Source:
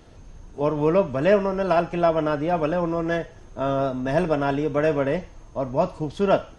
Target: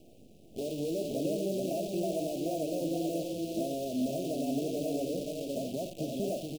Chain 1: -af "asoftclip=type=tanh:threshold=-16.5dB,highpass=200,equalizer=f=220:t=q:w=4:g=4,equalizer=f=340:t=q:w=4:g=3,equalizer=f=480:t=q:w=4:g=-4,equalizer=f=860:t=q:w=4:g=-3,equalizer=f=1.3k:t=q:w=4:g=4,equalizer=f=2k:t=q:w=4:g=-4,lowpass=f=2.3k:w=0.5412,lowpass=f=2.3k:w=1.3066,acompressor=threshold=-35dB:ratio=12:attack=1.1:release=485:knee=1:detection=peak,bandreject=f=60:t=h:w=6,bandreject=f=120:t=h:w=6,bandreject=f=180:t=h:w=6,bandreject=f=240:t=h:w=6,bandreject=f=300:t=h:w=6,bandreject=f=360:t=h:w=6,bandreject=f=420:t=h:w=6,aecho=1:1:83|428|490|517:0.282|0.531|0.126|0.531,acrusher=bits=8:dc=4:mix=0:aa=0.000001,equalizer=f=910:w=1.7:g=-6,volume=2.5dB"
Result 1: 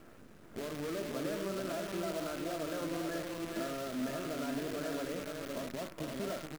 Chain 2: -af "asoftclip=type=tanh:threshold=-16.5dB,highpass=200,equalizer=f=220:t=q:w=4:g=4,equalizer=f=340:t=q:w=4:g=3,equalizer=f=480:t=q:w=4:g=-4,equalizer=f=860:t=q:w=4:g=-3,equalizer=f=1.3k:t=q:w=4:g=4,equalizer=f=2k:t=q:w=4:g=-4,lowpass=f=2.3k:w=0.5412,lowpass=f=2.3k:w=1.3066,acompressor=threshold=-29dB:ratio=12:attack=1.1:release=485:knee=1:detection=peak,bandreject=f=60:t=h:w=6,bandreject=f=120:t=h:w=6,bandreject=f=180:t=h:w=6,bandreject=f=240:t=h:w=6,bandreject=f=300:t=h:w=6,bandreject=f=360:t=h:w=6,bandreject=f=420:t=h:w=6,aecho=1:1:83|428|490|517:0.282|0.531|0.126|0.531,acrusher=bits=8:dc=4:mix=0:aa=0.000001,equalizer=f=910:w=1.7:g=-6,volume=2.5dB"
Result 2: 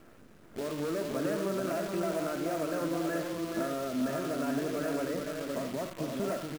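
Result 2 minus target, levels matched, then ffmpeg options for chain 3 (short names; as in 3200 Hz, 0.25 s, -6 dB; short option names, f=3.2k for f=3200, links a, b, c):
1000 Hz band +4.0 dB
-af "asoftclip=type=tanh:threshold=-16.5dB,highpass=200,equalizer=f=220:t=q:w=4:g=4,equalizer=f=340:t=q:w=4:g=3,equalizer=f=480:t=q:w=4:g=-4,equalizer=f=860:t=q:w=4:g=-3,equalizer=f=1.3k:t=q:w=4:g=4,equalizer=f=2k:t=q:w=4:g=-4,lowpass=f=2.3k:w=0.5412,lowpass=f=2.3k:w=1.3066,acompressor=threshold=-29dB:ratio=12:attack=1.1:release=485:knee=1:detection=peak,bandreject=f=60:t=h:w=6,bandreject=f=120:t=h:w=6,bandreject=f=180:t=h:w=6,bandreject=f=240:t=h:w=6,bandreject=f=300:t=h:w=6,bandreject=f=360:t=h:w=6,bandreject=f=420:t=h:w=6,aecho=1:1:83|428|490|517:0.282|0.531|0.126|0.531,acrusher=bits=8:dc=4:mix=0:aa=0.000001,asuperstop=centerf=1400:order=12:qfactor=0.75,equalizer=f=910:w=1.7:g=-6,volume=2.5dB"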